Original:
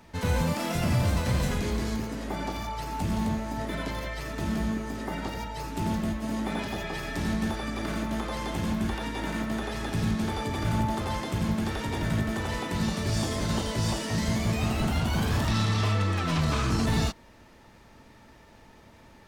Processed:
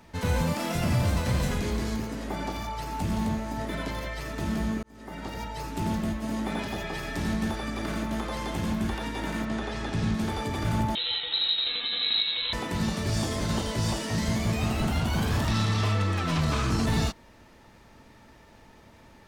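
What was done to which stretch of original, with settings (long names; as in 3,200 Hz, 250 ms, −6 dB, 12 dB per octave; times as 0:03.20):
0:04.83–0:05.45: fade in
0:09.45–0:10.14: low-pass filter 7,000 Hz
0:10.95–0:12.53: voice inversion scrambler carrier 4,000 Hz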